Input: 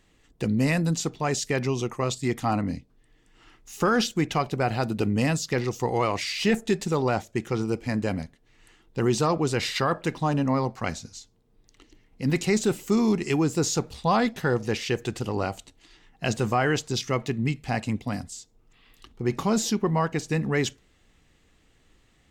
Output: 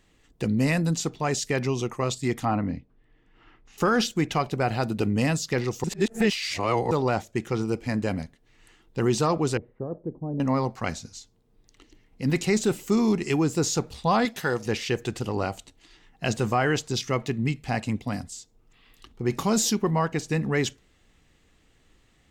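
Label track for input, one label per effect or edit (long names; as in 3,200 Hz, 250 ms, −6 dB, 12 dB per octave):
2.450000	3.780000	low-pass filter 2,600 Hz
5.840000	6.910000	reverse
9.570000	10.400000	transistor ladder low-pass 610 Hz, resonance 25%
14.250000	14.660000	spectral tilt +2 dB per octave
19.300000	19.910000	high-shelf EQ 5,100 Hz +7.5 dB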